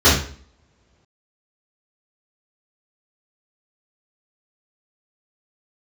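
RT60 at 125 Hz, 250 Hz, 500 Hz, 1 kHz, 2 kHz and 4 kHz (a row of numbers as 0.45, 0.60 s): 1.1, 0.65, 0.55, 0.45, 0.45, 0.40 s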